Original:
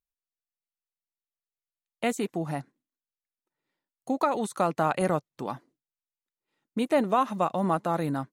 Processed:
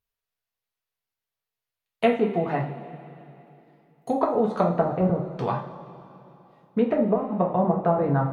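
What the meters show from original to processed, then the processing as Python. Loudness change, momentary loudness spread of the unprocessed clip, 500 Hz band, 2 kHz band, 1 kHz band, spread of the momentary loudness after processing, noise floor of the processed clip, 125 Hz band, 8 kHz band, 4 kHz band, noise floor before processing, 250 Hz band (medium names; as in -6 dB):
+4.0 dB, 12 LU, +5.5 dB, 0.0 dB, +1.0 dB, 17 LU, under -85 dBFS, +7.5 dB, under -15 dB, -2.0 dB, under -85 dBFS, +4.5 dB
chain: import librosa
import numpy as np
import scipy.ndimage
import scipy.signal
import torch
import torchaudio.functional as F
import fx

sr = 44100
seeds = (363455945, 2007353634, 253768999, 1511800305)

y = fx.env_lowpass_down(x, sr, base_hz=320.0, full_db=-20.5)
y = fx.graphic_eq(y, sr, hz=(125, 250, 8000), db=(4, -6, -10))
y = fx.rev_double_slope(y, sr, seeds[0], early_s=0.37, late_s=3.1, knee_db=-18, drr_db=-1.0)
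y = y * librosa.db_to_amplitude(6.0)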